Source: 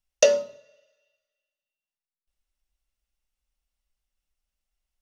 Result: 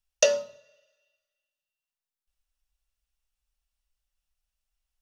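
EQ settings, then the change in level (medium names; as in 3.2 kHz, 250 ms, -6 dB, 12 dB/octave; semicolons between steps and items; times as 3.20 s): peaking EQ 320 Hz -9.5 dB 1.5 oct; band-stop 2.1 kHz, Q 13; 0.0 dB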